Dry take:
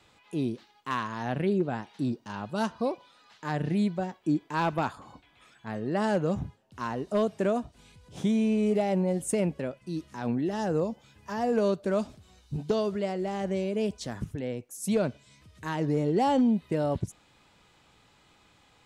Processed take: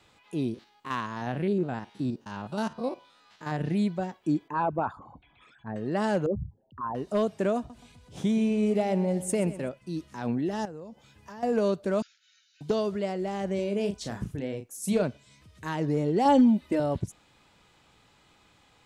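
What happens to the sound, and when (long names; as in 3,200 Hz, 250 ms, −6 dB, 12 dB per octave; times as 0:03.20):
0:00.54–0:03.61: spectrum averaged block by block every 50 ms
0:04.48–0:05.76: spectral envelope exaggerated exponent 2
0:06.26–0:06.95: spectral envelope exaggerated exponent 3
0:07.57–0:09.69: repeating echo 126 ms, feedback 44%, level −14.5 dB
0:10.65–0:11.43: downward compressor 3 to 1, threshold −43 dBFS
0:12.02–0:12.61: linear-phase brick-wall band-pass 1,300–7,200 Hz
0:13.55–0:15.03: double-tracking delay 35 ms −7 dB
0:16.25–0:16.80: comb filter 3.4 ms, depth 87%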